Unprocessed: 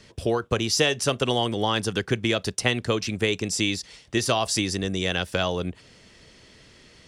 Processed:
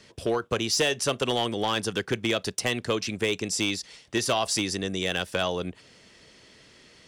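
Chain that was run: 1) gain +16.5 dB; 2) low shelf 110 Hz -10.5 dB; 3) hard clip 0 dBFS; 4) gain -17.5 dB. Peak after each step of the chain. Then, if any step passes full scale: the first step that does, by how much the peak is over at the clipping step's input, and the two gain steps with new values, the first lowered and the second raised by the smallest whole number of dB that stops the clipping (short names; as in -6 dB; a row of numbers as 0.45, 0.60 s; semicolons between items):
+10.0, +9.5, 0.0, -17.5 dBFS; step 1, 9.5 dB; step 1 +6.5 dB, step 4 -7.5 dB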